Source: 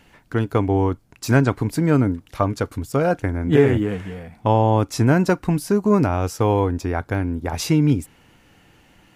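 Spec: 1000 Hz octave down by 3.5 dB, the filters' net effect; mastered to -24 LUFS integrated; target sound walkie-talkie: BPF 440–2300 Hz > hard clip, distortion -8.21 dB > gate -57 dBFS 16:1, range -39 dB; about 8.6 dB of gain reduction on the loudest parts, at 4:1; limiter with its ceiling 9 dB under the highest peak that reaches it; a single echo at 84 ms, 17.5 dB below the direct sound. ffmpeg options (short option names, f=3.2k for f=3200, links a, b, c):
-af "equalizer=f=1k:t=o:g=-4,acompressor=threshold=-21dB:ratio=4,alimiter=limit=-18.5dB:level=0:latency=1,highpass=440,lowpass=2.3k,aecho=1:1:84:0.133,asoftclip=type=hard:threshold=-32.5dB,agate=range=-39dB:threshold=-57dB:ratio=16,volume=15dB"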